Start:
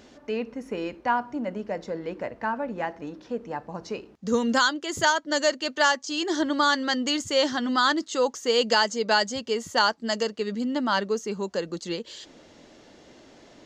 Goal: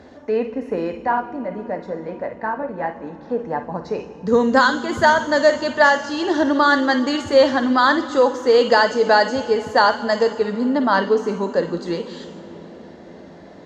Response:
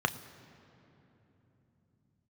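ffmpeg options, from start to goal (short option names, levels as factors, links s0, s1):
-filter_complex "[0:a]asettb=1/sr,asplit=3[s0][s1][s2];[s0]atrim=end=1.044[s3];[s1]atrim=start=1.04:end=3.28,asetpts=PTS-STARTPTS,afade=t=in:d=0.004:c=qsin,afade=t=out:st=2.236:d=0.004:c=qsin,flanger=delay=0.7:depth=5.8:regen=-65:speed=1.9:shape=triangular[s4];[s2]atrim=start=3.276[s5];[s3][s4]acrossfade=d=0.004:c1=hsin:c2=qsin[s6];[s6][s5]acrossfade=d=0.004:c1=qsin:c2=hsin[s7];[1:a]atrim=start_sample=2205,asetrate=26460,aresample=44100[s8];[s7][s8]afir=irnorm=-1:irlink=0,volume=0.531"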